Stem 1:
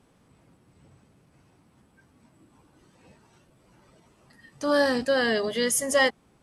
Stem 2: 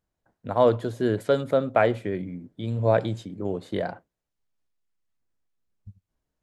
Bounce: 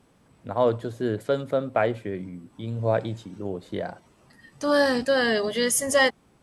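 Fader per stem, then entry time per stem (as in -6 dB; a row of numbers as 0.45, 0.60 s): +1.5, -2.5 dB; 0.00, 0.00 s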